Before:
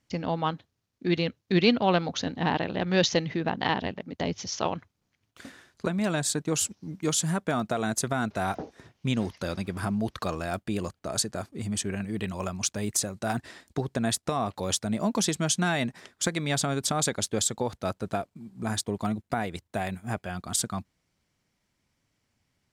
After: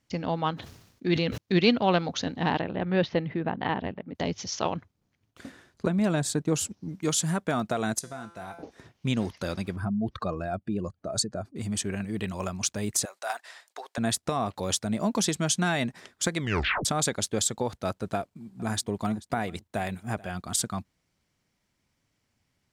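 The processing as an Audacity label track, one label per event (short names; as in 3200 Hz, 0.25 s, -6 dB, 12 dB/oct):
0.540000	1.380000	sustainer at most 70 dB/s
2.610000	4.150000	air absorption 410 m
4.740000	6.890000	tilt shelf lows +3.5 dB, about 820 Hz
7.990000	8.630000	resonator 170 Hz, decay 0.72 s, mix 80%
9.760000	11.560000	spectral contrast raised exponent 1.6
13.050000	13.980000	HPF 630 Hz 24 dB/oct
16.390000	16.390000	tape stop 0.46 s
18.160000	20.380000	echo 0.436 s -21 dB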